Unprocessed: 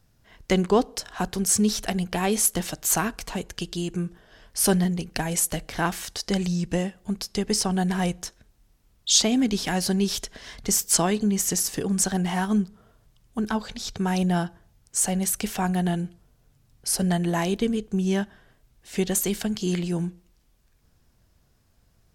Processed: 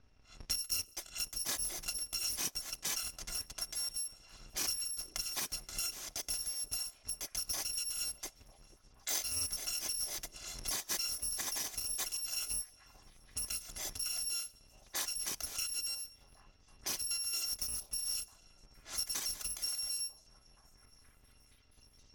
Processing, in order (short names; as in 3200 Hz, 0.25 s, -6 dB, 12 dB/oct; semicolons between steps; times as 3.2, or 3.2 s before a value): FFT order left unsorted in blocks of 256 samples; bell 5900 Hz +9 dB 0.42 oct; compressor 3:1, threshold -39 dBFS, peak gain reduction 19.5 dB; low-pass opened by the level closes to 2400 Hz, open at -36.5 dBFS; delay with a stepping band-pass 0.473 s, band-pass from 390 Hz, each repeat 0.7 oct, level -11.5 dB